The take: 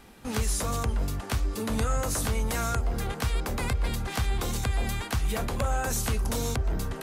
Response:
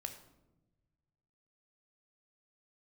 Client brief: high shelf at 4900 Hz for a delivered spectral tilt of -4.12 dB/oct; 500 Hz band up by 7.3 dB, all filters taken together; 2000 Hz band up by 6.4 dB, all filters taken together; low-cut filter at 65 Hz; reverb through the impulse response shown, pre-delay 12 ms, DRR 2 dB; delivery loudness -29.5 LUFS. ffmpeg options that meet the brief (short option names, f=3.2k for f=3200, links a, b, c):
-filter_complex "[0:a]highpass=65,equalizer=f=500:t=o:g=8,equalizer=f=2k:t=o:g=7,highshelf=f=4.9k:g=4.5,asplit=2[a][b];[1:a]atrim=start_sample=2205,adelay=12[c];[b][c]afir=irnorm=-1:irlink=0,volume=0.5dB[d];[a][d]amix=inputs=2:normalize=0,volume=-4.5dB"